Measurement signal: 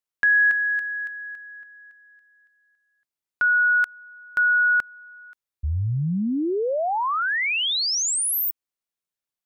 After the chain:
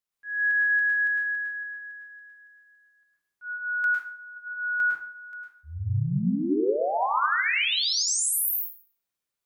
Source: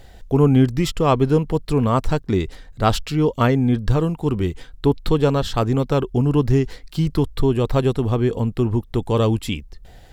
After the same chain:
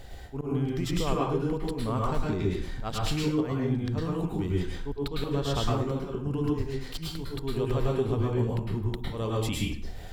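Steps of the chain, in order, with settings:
volume swells 440 ms
downward compressor 12 to 1, threshold −27 dBFS
dense smooth reverb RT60 0.56 s, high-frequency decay 0.75×, pre-delay 95 ms, DRR −3.5 dB
level −1 dB

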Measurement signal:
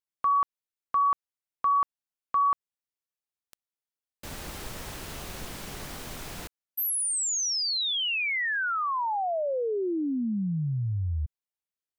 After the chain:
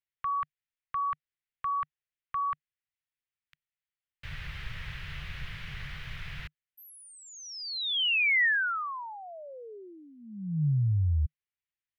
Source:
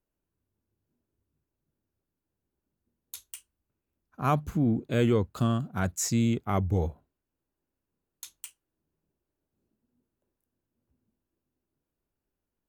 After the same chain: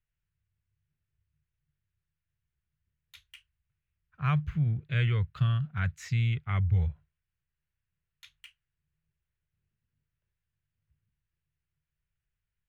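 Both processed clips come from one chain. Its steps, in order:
drawn EQ curve 150 Hz 0 dB, 260 Hz −28 dB, 420 Hz −19 dB, 790 Hz −18 dB, 1,900 Hz +2 dB, 3,100 Hz −2 dB, 7,800 Hz −26 dB
level +3 dB

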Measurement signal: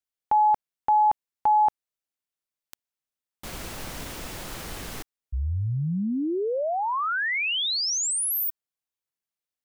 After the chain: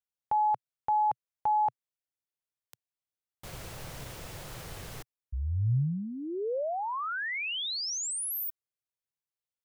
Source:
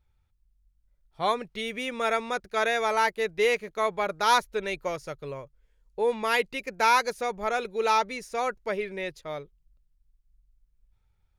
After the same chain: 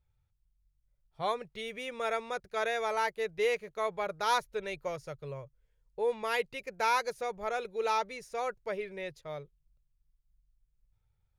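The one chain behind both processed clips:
octave-band graphic EQ 125/250/500 Hz +10/−7/+4 dB
level −7.5 dB

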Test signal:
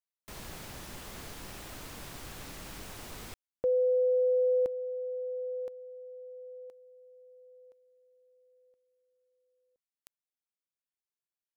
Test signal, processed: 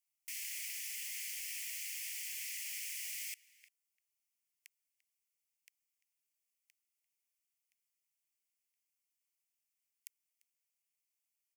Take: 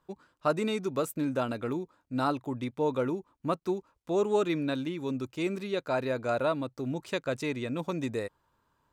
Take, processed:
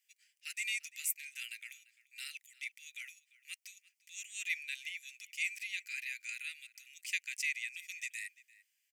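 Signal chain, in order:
Butterworth high-pass 2,000 Hz 72 dB per octave
parametric band 3,800 Hz −15 dB 0.41 octaves
slap from a distant wall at 59 metres, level −19 dB
level +8 dB

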